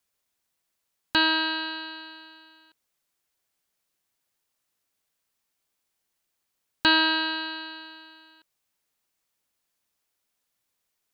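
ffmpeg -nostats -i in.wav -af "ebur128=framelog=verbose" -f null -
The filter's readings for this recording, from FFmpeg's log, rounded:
Integrated loudness:
  I:         -24.0 LUFS
  Threshold: -36.7 LUFS
Loudness range:
  LRA:        16.2 LU
  Threshold: -50.2 LUFS
  LRA low:   -43.9 LUFS
  LRA high:  -27.7 LUFS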